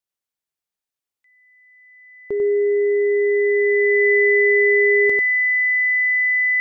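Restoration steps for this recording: band-stop 2 kHz, Q 30; inverse comb 95 ms -3.5 dB

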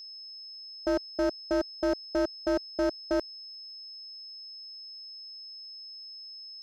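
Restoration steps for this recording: clip repair -22.5 dBFS; de-click; band-stop 5.2 kHz, Q 30

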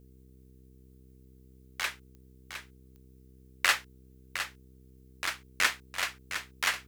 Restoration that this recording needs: de-click; de-hum 64.4 Hz, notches 7; expander -49 dBFS, range -21 dB; inverse comb 710 ms -9.5 dB

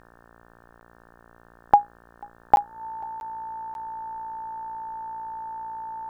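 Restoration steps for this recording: de-hum 57.9 Hz, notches 31; band-stop 890 Hz, Q 30; interpolate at 0.80/2.56/3.20/3.74 s, 11 ms; expander -46 dBFS, range -21 dB

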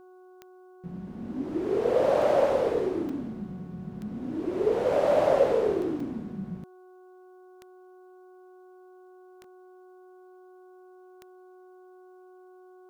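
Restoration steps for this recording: de-click; de-hum 368.1 Hz, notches 4; interpolate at 3.09/6.00/9.44 s, 3.3 ms

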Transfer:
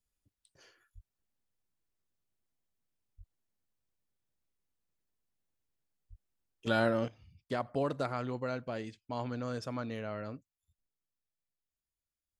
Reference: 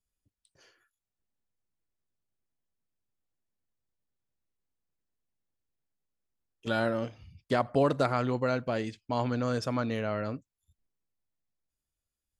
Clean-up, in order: 0.94–1.06 s: high-pass 140 Hz 24 dB/octave; 3.17–3.29 s: high-pass 140 Hz 24 dB/octave; 6.09–6.21 s: high-pass 140 Hz 24 dB/octave; trim 0 dB, from 7.08 s +7.5 dB

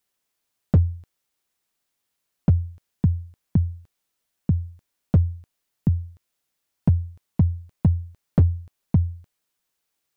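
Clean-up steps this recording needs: clip repair -10.5 dBFS

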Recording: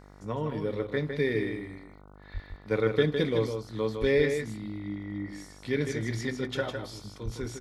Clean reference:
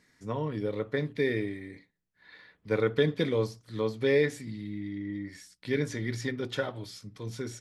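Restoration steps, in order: de-click; de-hum 49.6 Hz, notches 30; 2.33–2.45 s: high-pass 140 Hz 24 dB/octave; 4.00–4.12 s: high-pass 140 Hz 24 dB/octave; 7.24–7.36 s: high-pass 140 Hz 24 dB/octave; inverse comb 157 ms -6.5 dB

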